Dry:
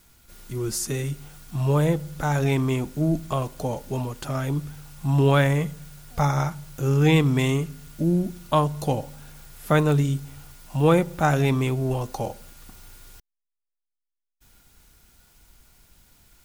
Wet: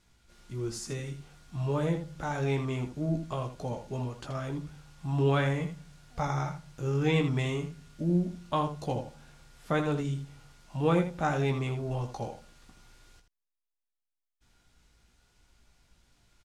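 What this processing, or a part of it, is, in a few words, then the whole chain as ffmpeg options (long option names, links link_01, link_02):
slapback doubling: -filter_complex "[0:a]asplit=3[link_01][link_02][link_03];[link_02]adelay=17,volume=-6dB[link_04];[link_03]adelay=80,volume=-9dB[link_05];[link_01][link_04][link_05]amix=inputs=3:normalize=0,lowpass=6500,volume=-8.5dB"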